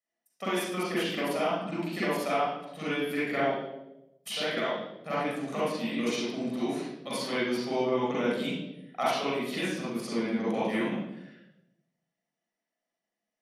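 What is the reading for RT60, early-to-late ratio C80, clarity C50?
0.95 s, 1.5 dB, -3.0 dB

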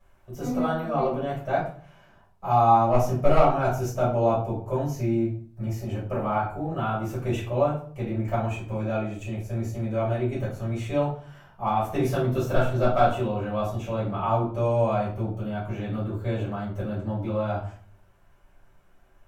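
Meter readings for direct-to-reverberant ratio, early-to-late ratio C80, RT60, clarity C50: -9.5 dB, 10.5 dB, 0.50 s, 5.5 dB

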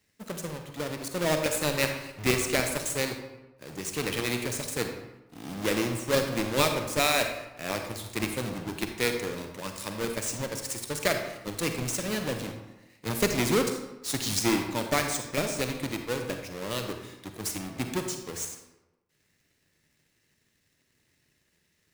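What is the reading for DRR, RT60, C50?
5.0 dB, 1.1 s, 6.0 dB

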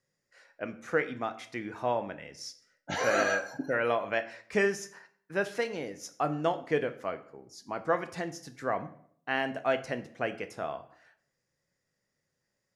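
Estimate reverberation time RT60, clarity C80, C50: 0.65 s, 18.0 dB, 14.5 dB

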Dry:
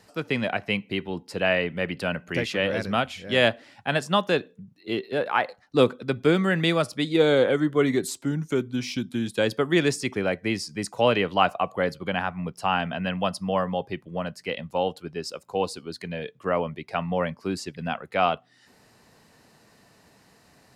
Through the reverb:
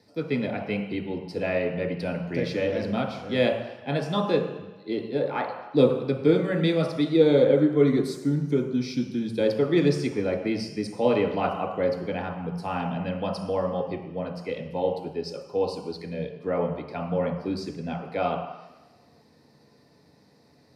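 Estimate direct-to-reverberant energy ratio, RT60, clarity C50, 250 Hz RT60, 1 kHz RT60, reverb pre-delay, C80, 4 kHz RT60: 0.5 dB, 1.1 s, 5.5 dB, 1.0 s, 1.2 s, 3 ms, 8.0 dB, 1.3 s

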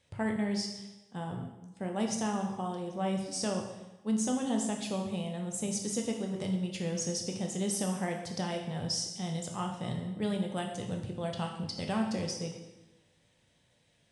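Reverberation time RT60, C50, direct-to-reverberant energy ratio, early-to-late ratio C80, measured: 1.0 s, 5.5 dB, 1.5 dB, 8.0 dB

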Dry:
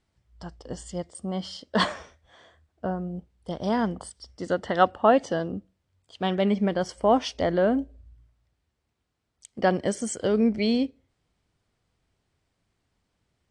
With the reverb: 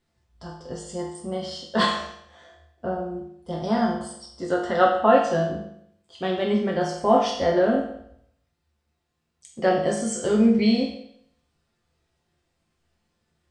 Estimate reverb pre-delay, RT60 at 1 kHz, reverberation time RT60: 6 ms, 0.70 s, 0.70 s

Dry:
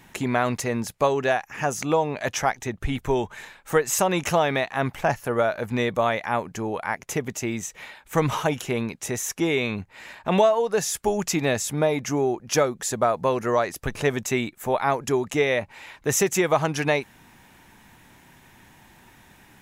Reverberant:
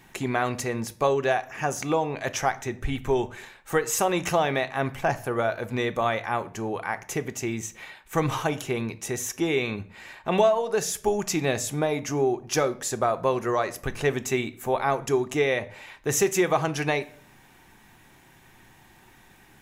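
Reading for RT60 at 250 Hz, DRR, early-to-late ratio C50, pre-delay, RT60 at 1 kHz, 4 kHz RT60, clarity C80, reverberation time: 0.60 s, 9.0 dB, 18.0 dB, 3 ms, 0.45 s, 0.40 s, 22.0 dB, 0.50 s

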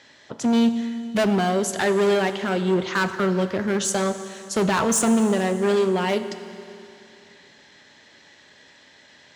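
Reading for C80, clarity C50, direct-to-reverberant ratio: 11.5 dB, 11.0 dB, 10.0 dB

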